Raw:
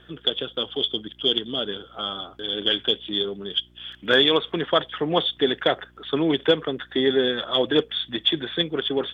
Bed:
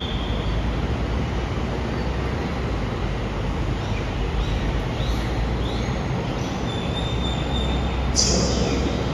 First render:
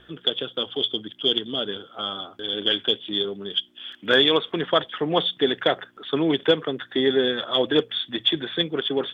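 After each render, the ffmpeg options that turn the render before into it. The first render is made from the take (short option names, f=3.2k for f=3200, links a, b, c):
-af "bandreject=f=60:t=h:w=4,bandreject=f=120:t=h:w=4,bandreject=f=180:t=h:w=4"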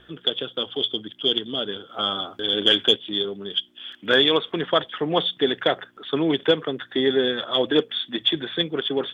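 -filter_complex "[0:a]asettb=1/sr,asplit=3[a][b][c];[a]atrim=end=1.894[d];[b]atrim=start=1.89:end=2.96,asetpts=PTS-STARTPTS,afade=t=in:d=0.004:c=qsin,afade=t=out:st=1.066:d=0.004:c=qsin,acontrast=23[e];[c]atrim=start=2.956[f];[d][e]acrossfade=d=0.004:c1=hsin:c2=qsin[g];[g][f]acrossfade=d=0.004:c1=qsin:c2=hsin,asettb=1/sr,asplit=3[h][i][j];[h]atrim=end=7.714[k];[i]atrim=start=7.71:end=8.22,asetpts=PTS-STARTPTS,afade=t=in:d=0.004:c=qsin,afade=t=out:st=0.506:d=0.004:c=qsin,lowshelf=f=140:t=q:w=1.5:g=-7[l];[j]atrim=start=8.216[m];[k][l]acrossfade=d=0.004:c1=hsin:c2=qsin[n];[n][m]acrossfade=d=0.004:c1=qsin:c2=hsin"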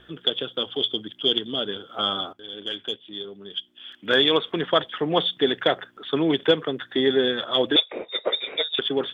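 -filter_complex "[0:a]asettb=1/sr,asplit=3[a][b][c];[a]atrim=end=7.764[d];[b]atrim=start=7.76:end=8.79,asetpts=PTS-STARTPTS,afade=t=in:d=0.004:c=qsin,afade=t=out:st=1.026:d=0.004:c=qsin,lowpass=f=3.3k:t=q:w=0.5098,lowpass=f=3.3k:t=q:w=0.6013,lowpass=f=3.3k:t=q:w=0.9,lowpass=f=3.3k:t=q:w=2.563,afreqshift=-3900[e];[c]atrim=start=8.786[f];[d][e]acrossfade=d=0.004:c1=hsin:c2=qsin[g];[g][f]acrossfade=d=0.004:c1=qsin:c2=hsin,asplit=2[h][i];[h]atrim=end=2.33,asetpts=PTS-STARTPTS,afade=t=out:st=2.326:d=0.004:c=hsin:silence=0.188365[j];[i]atrim=start=2.33,asetpts=PTS-STARTPTS,afade=t=in:d=2.06:c=qua:silence=0.188365[k];[j][k]concat=n=2:v=0:a=1"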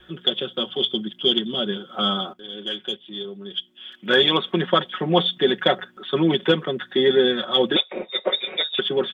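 -af "aecho=1:1:5.4:0.76,adynamicequalizer=threshold=0.00708:dfrequency=210:dqfactor=2.5:tfrequency=210:tqfactor=2.5:attack=5:release=100:ratio=0.375:range=4:mode=boostabove:tftype=bell"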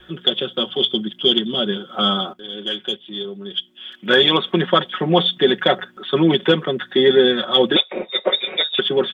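-af "volume=4dB,alimiter=limit=-3dB:level=0:latency=1"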